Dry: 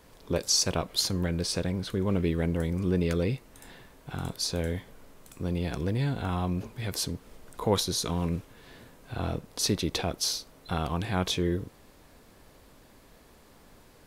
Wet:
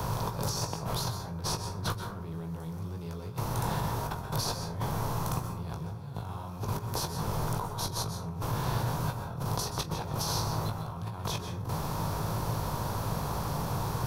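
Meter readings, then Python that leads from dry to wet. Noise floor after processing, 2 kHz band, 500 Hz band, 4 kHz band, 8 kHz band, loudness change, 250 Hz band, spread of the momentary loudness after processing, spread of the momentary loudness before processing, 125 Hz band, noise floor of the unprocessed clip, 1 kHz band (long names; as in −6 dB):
−40 dBFS, −2.5 dB, −5.5 dB, −6.0 dB, −5.0 dB, −4.0 dB, −6.0 dB, 7 LU, 10 LU, 0.0 dB, −56 dBFS, +4.5 dB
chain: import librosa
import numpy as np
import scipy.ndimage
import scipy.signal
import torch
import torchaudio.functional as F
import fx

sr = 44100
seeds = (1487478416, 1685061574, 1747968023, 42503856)

p1 = fx.bin_compress(x, sr, power=0.6)
p2 = fx.graphic_eq_10(p1, sr, hz=(125, 250, 500, 1000, 2000, 4000, 8000), db=(10, -9, -7, 7, -10, -9, -11))
p3 = fx.over_compress(p2, sr, threshold_db=-37.0, ratio=-1.0)
p4 = p3 + fx.room_early_taps(p3, sr, ms=(19, 43), db=(-6.5, -17.0), dry=0)
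p5 = fx.rev_plate(p4, sr, seeds[0], rt60_s=0.57, hf_ratio=0.5, predelay_ms=115, drr_db=7.0)
y = fx.band_squash(p5, sr, depth_pct=40)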